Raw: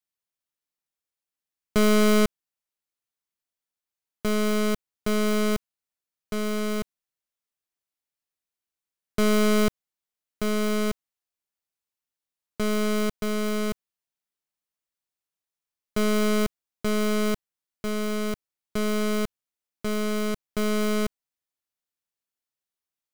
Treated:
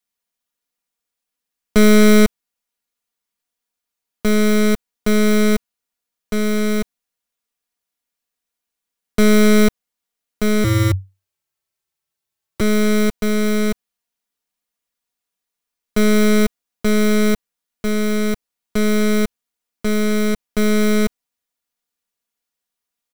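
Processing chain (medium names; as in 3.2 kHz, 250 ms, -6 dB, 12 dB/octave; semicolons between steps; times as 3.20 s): comb 4.2 ms, depth 63%; 10.64–12.61 s: frequency shift -96 Hz; trim +6 dB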